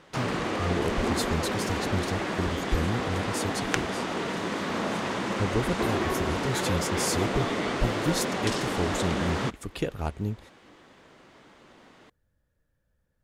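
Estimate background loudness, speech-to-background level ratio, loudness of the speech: -29.5 LUFS, -3.0 dB, -32.5 LUFS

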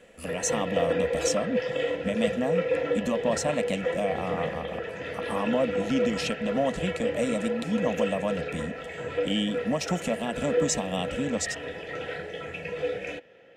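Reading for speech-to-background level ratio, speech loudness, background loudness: 0.5 dB, -30.5 LUFS, -31.0 LUFS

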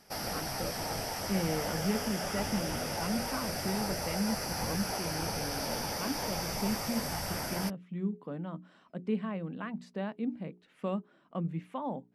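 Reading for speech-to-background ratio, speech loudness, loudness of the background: -2.5 dB, -37.5 LUFS, -35.0 LUFS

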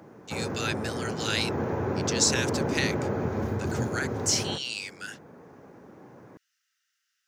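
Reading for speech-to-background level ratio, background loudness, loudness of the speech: 0.5 dB, -30.5 LUFS, -30.0 LUFS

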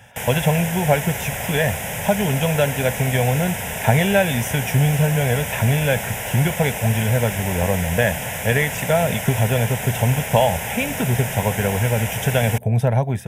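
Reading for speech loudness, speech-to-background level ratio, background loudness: -21.0 LUFS, 5.0 dB, -26.0 LUFS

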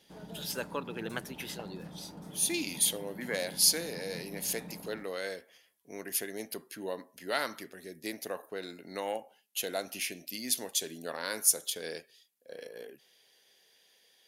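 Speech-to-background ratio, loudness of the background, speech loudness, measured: 14.5 dB, -47.5 LUFS, -33.0 LUFS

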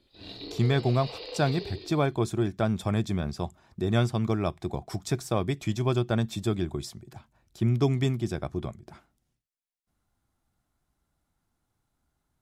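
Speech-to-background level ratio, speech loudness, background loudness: 12.0 dB, -28.5 LUFS, -40.5 LUFS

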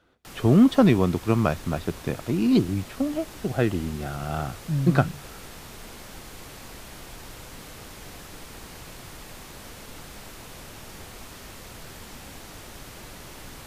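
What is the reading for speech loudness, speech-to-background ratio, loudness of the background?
-23.5 LUFS, 18.5 dB, -42.0 LUFS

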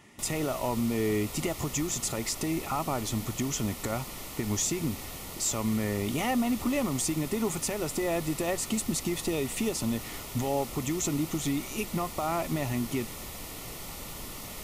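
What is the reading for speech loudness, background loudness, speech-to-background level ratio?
-31.0 LUFS, -39.5 LUFS, 8.5 dB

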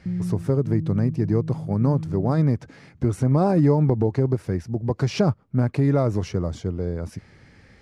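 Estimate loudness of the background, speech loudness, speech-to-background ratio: -32.0 LUFS, -23.0 LUFS, 9.0 dB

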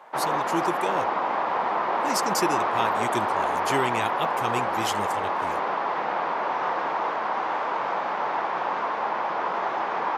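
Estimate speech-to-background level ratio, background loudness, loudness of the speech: -5.0 dB, -26.0 LUFS, -31.0 LUFS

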